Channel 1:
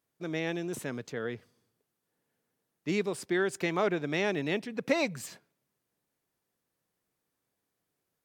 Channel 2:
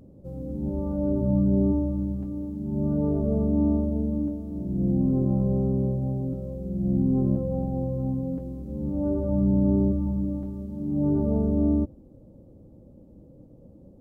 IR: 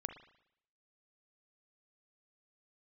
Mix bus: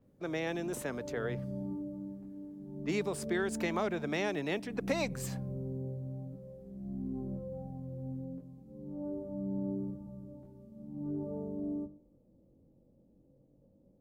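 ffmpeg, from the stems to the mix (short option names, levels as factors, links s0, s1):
-filter_complex "[0:a]equalizer=f=830:t=o:w=2.5:g=9,volume=0.531[s0];[1:a]equalizer=f=70:t=o:w=0.41:g=-10.5,bandreject=f=50:t=h:w=6,bandreject=f=100:t=h:w=6,bandreject=f=150:t=h:w=6,bandreject=f=200:t=h:w=6,bandreject=f=250:t=h:w=6,bandreject=f=300:t=h:w=6,bandreject=f=350:t=h:w=6,flanger=delay=20:depth=2.5:speed=0.43,volume=0.188,asplit=2[s1][s2];[s2]volume=0.668[s3];[2:a]atrim=start_sample=2205[s4];[s3][s4]afir=irnorm=-1:irlink=0[s5];[s0][s1][s5]amix=inputs=3:normalize=0,acrossover=split=240|3000[s6][s7][s8];[s7]acompressor=threshold=0.0224:ratio=3[s9];[s6][s9][s8]amix=inputs=3:normalize=0,adynamicequalizer=threshold=0.00112:dfrequency=5800:dqfactor=0.7:tfrequency=5800:tqfactor=0.7:attack=5:release=100:ratio=0.375:range=3:mode=boostabove:tftype=highshelf"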